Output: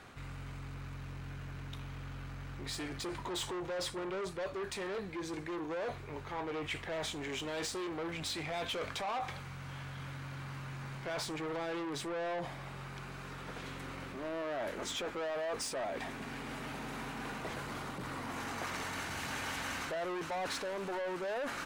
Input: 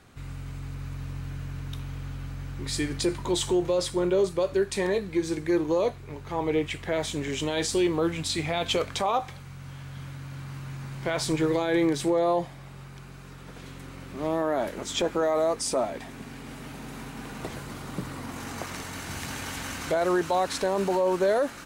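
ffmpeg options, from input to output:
-af "asoftclip=type=tanh:threshold=-30dB,highshelf=f=4.2k:g=-10.5,areverse,acompressor=threshold=-40dB:ratio=6,areverse,lowshelf=f=420:g=-10,volume=7dB"

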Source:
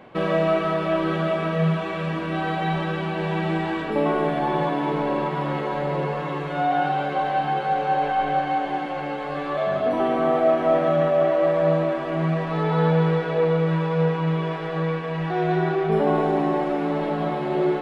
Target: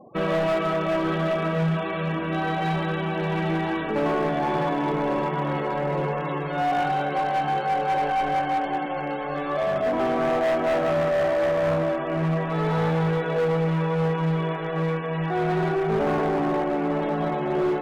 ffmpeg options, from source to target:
-af "afftfilt=real='re*gte(hypot(re,im),0.0112)':imag='im*gte(hypot(re,im),0.0112)':win_size=1024:overlap=0.75,volume=19.5dB,asoftclip=hard,volume=-19.5dB"

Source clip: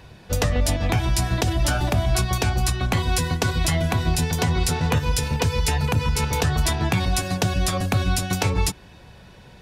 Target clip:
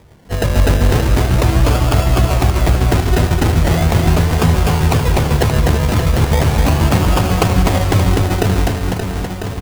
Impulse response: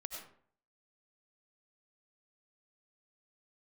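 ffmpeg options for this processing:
-af "acrusher=samples=31:mix=1:aa=0.000001:lfo=1:lforange=18.6:lforate=0.39,aecho=1:1:250|575|997.5|1547|2261:0.631|0.398|0.251|0.158|0.1,dynaudnorm=f=150:g=5:m=9dB"

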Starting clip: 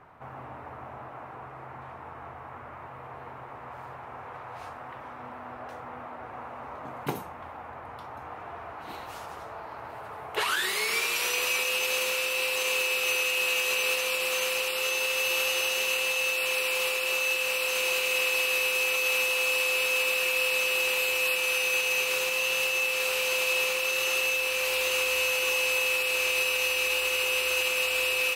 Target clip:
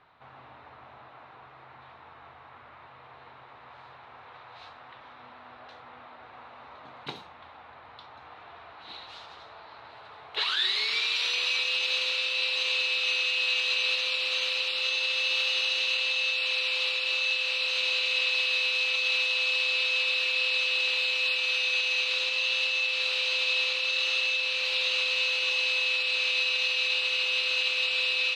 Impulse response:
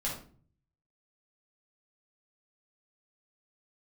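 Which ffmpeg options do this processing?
-af "lowpass=f=3.9k:t=q:w=5.6,tiltshelf=f=970:g=-3.5,volume=-8dB"

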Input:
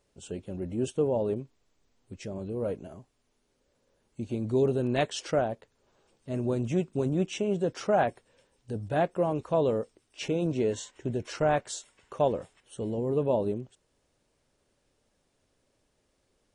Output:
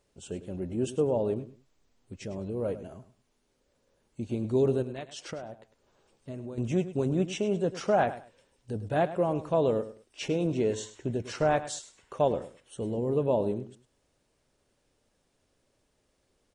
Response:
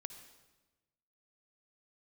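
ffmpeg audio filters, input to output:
-filter_complex "[0:a]asettb=1/sr,asplit=3[a][b][c];[a]atrim=end=4.824[d];[b]atrim=start=4.82:end=6.58,asetpts=PTS-STARTPTS,afade=t=in:d=0.004:c=qsin,afade=t=out:st=1.756:d=0.004:c=qsin,acompressor=threshold=-36dB:ratio=12[e];[c]atrim=start=6.576[f];[d][e]acrossfade=d=0.004:c1=hsin:c2=qsin[g];[g][f]acrossfade=d=0.004:c1=qsin:c2=hsin,aecho=1:1:103|206:0.2|0.0439"

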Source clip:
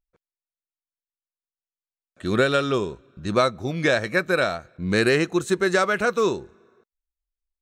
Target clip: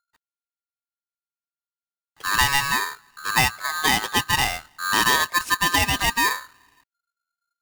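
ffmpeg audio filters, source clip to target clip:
-af "aeval=exprs='val(0)*sgn(sin(2*PI*1400*n/s))':c=same"

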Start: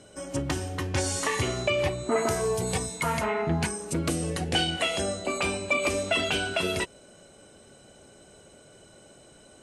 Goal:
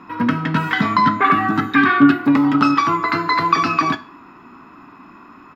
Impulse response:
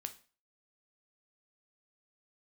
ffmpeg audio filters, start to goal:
-filter_complex "[0:a]asetrate=76440,aresample=44100,firequalizer=gain_entry='entry(110,0);entry(270,14);entry(520,-10);entry(1200,12);entry(3400,-4);entry(9000,-28)':delay=0.05:min_phase=1,asplit=2[a][b];[1:a]atrim=start_sample=2205[c];[b][c]afir=irnorm=-1:irlink=0,volume=9.5dB[d];[a][d]amix=inputs=2:normalize=0,volume=-4.5dB"

